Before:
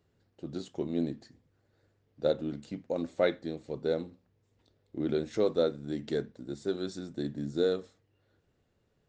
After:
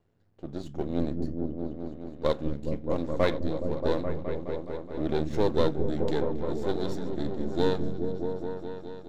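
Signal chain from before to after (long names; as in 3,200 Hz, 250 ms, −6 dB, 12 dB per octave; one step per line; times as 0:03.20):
gain on one half-wave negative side −12 dB
echo whose low-pass opens from repeat to repeat 210 ms, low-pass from 200 Hz, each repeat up 1 octave, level 0 dB
one half of a high-frequency compander decoder only
level +4.5 dB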